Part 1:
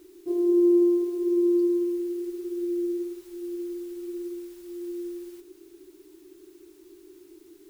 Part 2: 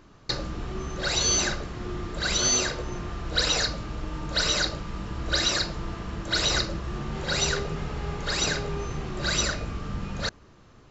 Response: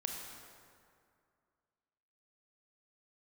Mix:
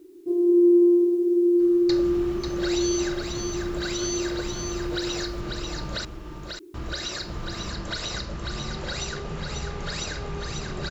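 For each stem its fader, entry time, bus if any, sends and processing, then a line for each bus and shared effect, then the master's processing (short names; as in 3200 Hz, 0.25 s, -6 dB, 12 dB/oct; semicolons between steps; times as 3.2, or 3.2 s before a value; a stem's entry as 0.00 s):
-6.0 dB, 0.00 s, no send, echo send -9.5 dB, graphic EQ 125/250/500 Hz +7/+11/+5 dB
+2.5 dB, 1.60 s, muted 6.05–6.74, no send, echo send -5 dB, compressor, threshold -32 dBFS, peak gain reduction 12 dB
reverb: off
echo: echo 0.542 s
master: dry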